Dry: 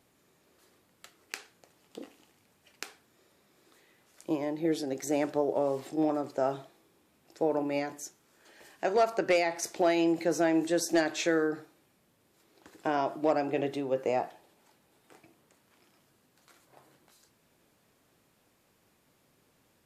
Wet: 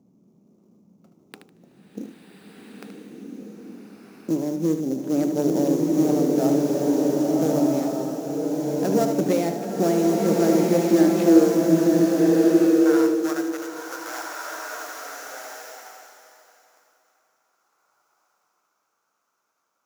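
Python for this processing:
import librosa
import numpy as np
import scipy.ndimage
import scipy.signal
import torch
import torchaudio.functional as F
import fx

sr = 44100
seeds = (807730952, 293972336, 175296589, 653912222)

p1 = fx.wiener(x, sr, points=25)
p2 = fx.riaa(p1, sr, side='playback')
p3 = 10.0 ** (-21.5 / 20.0) * (np.abs((p2 / 10.0 ** (-21.5 / 20.0) + 3.0) % 4.0 - 2.0) - 1.0)
p4 = p2 + F.gain(torch.from_numpy(p3), -11.0).numpy()
p5 = fx.sample_hold(p4, sr, seeds[0], rate_hz=6400.0, jitter_pct=20)
p6 = fx.filter_sweep_highpass(p5, sr, from_hz=200.0, to_hz=1400.0, start_s=10.77, end_s=12.91, q=4.4)
p7 = p6 + fx.echo_feedback(p6, sr, ms=76, feedback_pct=26, wet_db=-9.0, dry=0)
p8 = fx.rev_bloom(p7, sr, seeds[1], attack_ms=1490, drr_db=-3.0)
y = F.gain(torch.from_numpy(p8), -3.0).numpy()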